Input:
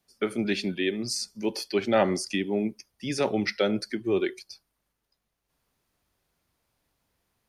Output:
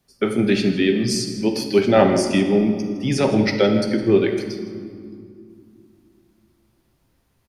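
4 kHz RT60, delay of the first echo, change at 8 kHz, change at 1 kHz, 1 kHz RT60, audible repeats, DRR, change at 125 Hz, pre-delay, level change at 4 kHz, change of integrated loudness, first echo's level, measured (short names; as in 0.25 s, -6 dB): 1.4 s, 0.161 s, +5.5 dB, +7.5 dB, 2.3 s, 1, 3.5 dB, +13.0 dB, 8 ms, +6.0 dB, +9.0 dB, -14.5 dB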